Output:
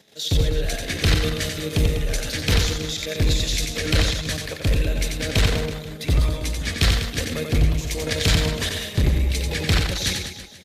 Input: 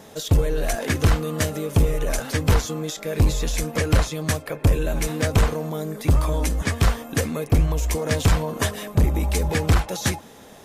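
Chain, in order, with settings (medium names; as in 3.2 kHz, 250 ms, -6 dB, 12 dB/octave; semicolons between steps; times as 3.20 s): level held to a coarse grid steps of 9 dB; ten-band graphic EQ 1 kHz -8 dB, 2 kHz +5 dB, 4 kHz +11 dB; reverse bouncing-ball echo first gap 90 ms, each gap 1.2×, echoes 5; three bands expanded up and down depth 40%; trim +1 dB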